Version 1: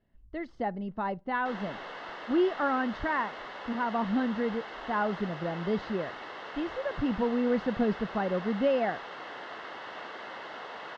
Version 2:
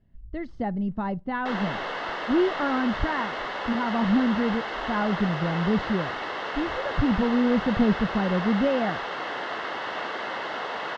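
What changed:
speech: add tone controls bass +13 dB, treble +2 dB; background +10.0 dB

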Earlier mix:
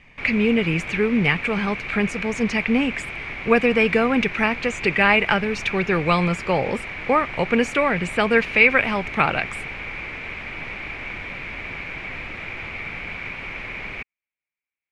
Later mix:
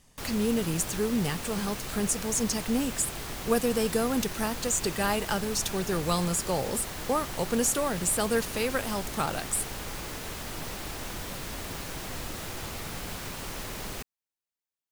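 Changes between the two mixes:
speech -7.5 dB; master: remove resonant low-pass 2.3 kHz, resonance Q 10

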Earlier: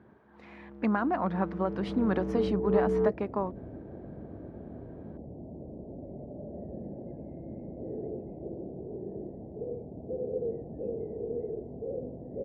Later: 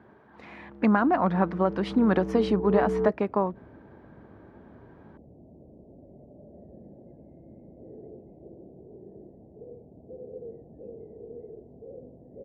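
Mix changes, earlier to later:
speech +6.0 dB; second sound -8.0 dB

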